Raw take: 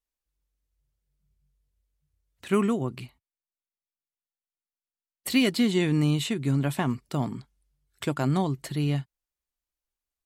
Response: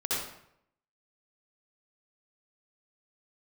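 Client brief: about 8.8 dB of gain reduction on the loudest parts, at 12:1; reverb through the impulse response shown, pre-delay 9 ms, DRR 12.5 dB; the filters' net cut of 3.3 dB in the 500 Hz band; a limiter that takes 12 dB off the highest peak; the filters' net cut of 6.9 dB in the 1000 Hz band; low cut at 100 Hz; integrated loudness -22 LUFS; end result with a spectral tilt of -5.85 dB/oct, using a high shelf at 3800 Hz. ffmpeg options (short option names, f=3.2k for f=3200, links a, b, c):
-filter_complex "[0:a]highpass=100,equalizer=f=500:t=o:g=-3,equalizer=f=1k:t=o:g=-8,highshelf=f=3.8k:g=-5,acompressor=threshold=-28dB:ratio=12,alimiter=level_in=7dB:limit=-24dB:level=0:latency=1,volume=-7dB,asplit=2[a][b];[1:a]atrim=start_sample=2205,adelay=9[c];[b][c]afir=irnorm=-1:irlink=0,volume=-20dB[d];[a][d]amix=inputs=2:normalize=0,volume=18dB"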